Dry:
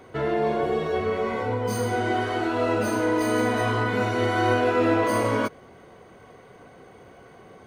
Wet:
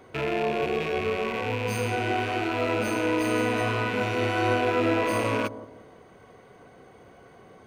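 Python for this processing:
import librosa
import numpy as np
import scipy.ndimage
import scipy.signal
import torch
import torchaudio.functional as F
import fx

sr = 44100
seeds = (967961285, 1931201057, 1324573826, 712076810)

y = fx.rattle_buzz(x, sr, strikes_db=-40.0, level_db=-19.0)
y = fx.echo_bbd(y, sr, ms=174, stages=1024, feedback_pct=36, wet_db=-13)
y = y * librosa.db_to_amplitude(-3.0)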